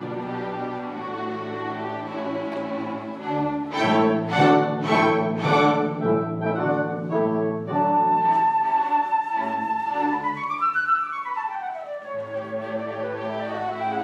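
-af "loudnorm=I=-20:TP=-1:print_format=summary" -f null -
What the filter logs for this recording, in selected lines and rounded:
Input Integrated:    -24.4 LUFS
Input True Peak:      -5.3 dBTP
Input LRA:             8.2 LU
Input Threshold:     -34.4 LUFS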